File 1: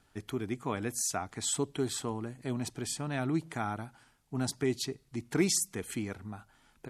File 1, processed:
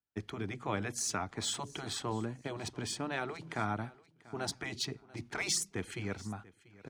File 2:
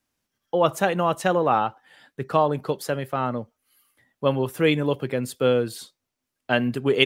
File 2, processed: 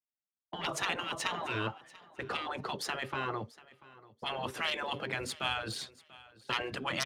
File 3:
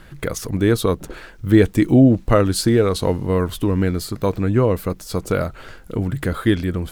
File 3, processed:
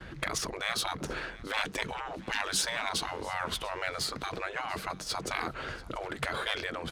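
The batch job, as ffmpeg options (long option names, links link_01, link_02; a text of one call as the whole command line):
ffmpeg -i in.wav -filter_complex "[0:a]aemphasis=mode=reproduction:type=50kf,aeval=exprs='0.794*(cos(1*acos(clip(val(0)/0.794,-1,1)))-cos(1*PI/2))+0.0631*(cos(4*acos(clip(val(0)/0.794,-1,1)))-cos(4*PI/2))+0.0355*(cos(5*acos(clip(val(0)/0.794,-1,1)))-cos(5*PI/2))+0.0501*(cos(6*acos(clip(val(0)/0.794,-1,1)))-cos(6*PI/2))+0.0141*(cos(8*acos(clip(val(0)/0.794,-1,1)))-cos(8*PI/2))':channel_layout=same,bandreject=frequency=7600:width=20,agate=range=-33dB:threshold=-41dB:ratio=3:detection=peak,highpass=41,highshelf=frequency=3600:gain=8,acrossover=split=120|2000[link_01][link_02][link_03];[link_01]acompressor=threshold=-37dB:ratio=6[link_04];[link_04][link_02][link_03]amix=inputs=3:normalize=0,afftfilt=real='re*lt(hypot(re,im),0.158)':imag='im*lt(hypot(re,im),0.158)':win_size=1024:overlap=0.75,adynamicsmooth=sensitivity=5.5:basefreq=7100,aecho=1:1:689|1378:0.0891|0.0196" out.wav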